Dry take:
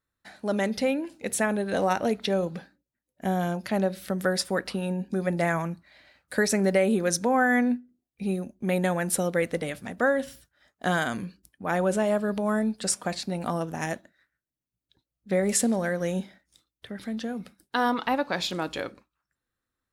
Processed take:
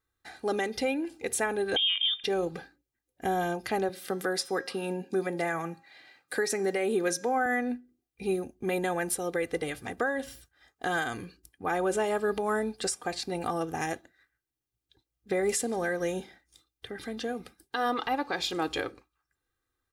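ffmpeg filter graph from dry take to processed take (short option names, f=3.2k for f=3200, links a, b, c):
-filter_complex "[0:a]asettb=1/sr,asplit=3[a][b][c];[a]atrim=end=1.764[d];[b]atrim=start=1.76:end=2.24,asetpts=PTS-STARTPTS,afade=t=in:d=0.004:c=qsin,afade=t=out:st=0.476:d=0.004:c=qsin,acrossover=split=2500[e][f];[f]acompressor=threshold=-54dB:ratio=4:attack=1:release=60[g];[e][g]amix=inputs=2:normalize=0,equalizer=f=710:w=1.1:g=11.5,lowpass=f=3.2k:t=q:w=0.5098,lowpass=f=3.2k:t=q:w=0.6013,lowpass=f=3.2k:t=q:w=0.9,lowpass=f=3.2k:t=q:w=2.563,afreqshift=-3800[h];[c]atrim=start=2.236[i];[d][h]acrossfade=d=0.004:c1=hsin:c2=qsin[j];[j][i]acrossfade=d=0.004:c1=qsin:c2=hsin,asettb=1/sr,asplit=3[k][l][m];[k]atrim=end=3.894[n];[l]atrim=start=3.89:end=7.46,asetpts=PTS-STARTPTS,afade=t=in:d=0.004:c=qsin,afade=t=out:st=3.566:d=0.004:c=qsin,highpass=f=140:w=0.5412,highpass=f=140:w=1.3066,bandreject=f=269.7:t=h:w=4,bandreject=f=539.4:t=h:w=4,bandreject=f=809.1:t=h:w=4,bandreject=f=1.0788k:t=h:w=4,bandreject=f=1.3485k:t=h:w=4,bandreject=f=1.6182k:t=h:w=4,bandreject=f=1.8879k:t=h:w=4,bandreject=f=2.1576k:t=h:w=4,bandreject=f=2.4273k:t=h:w=4,bandreject=f=2.697k:t=h:w=4,bandreject=f=2.9667k:t=h:w=4,bandreject=f=3.2364k:t=h:w=4,bandreject=f=3.5061k:t=h:w=4,bandreject=f=3.7758k:t=h:w=4,bandreject=f=4.0455k:t=h:w=4,bandreject=f=4.3152k:t=h:w=4,bandreject=f=4.5849k:t=h:w=4,bandreject=f=4.8546k:t=h:w=4,bandreject=f=5.1243k:t=h:w=4,bandreject=f=5.394k:t=h:w=4,bandreject=f=5.6637k:t=h:w=4,bandreject=f=5.9334k:t=h:w=4,bandreject=f=6.2031k:t=h:w=4,bandreject=f=6.4728k:t=h:w=4,bandreject=f=6.7425k:t=h:w=4,bandreject=f=7.0122k:t=h:w=4,bandreject=f=7.2819k:t=h:w=4,bandreject=f=7.5516k:t=h:w=4,bandreject=f=7.8213k:t=h:w=4[o];[m]atrim=start=7.456[p];[n][o]acrossfade=d=0.004:c1=hsin:c2=qsin[q];[q][p]acrossfade=d=0.004:c1=qsin:c2=hsin,aecho=1:1:2.5:0.67,alimiter=limit=-19dB:level=0:latency=1:release=328"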